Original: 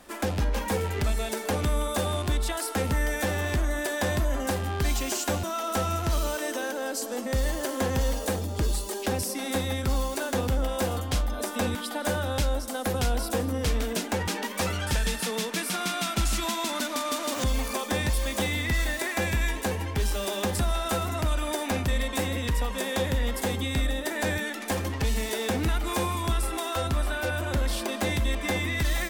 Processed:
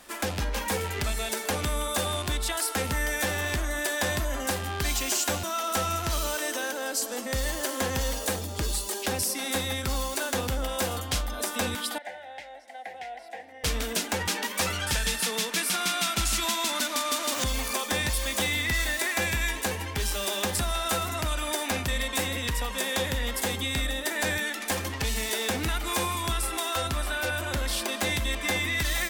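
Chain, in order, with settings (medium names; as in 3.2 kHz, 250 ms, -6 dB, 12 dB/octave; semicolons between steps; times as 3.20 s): 11.98–13.64 s: two resonant band-passes 1.2 kHz, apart 1.4 oct; tilt shelf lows -4.5 dB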